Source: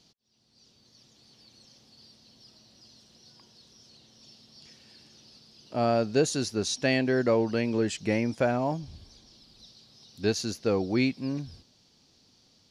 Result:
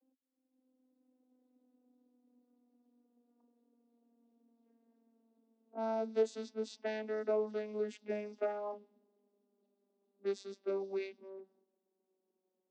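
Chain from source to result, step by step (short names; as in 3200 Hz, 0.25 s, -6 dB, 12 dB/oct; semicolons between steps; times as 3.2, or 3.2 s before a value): vocoder on a gliding note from C4, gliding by -6 st; low-pass opened by the level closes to 660 Hz, open at -23.5 dBFS; elliptic high-pass 250 Hz, stop band 40 dB; gain -6.5 dB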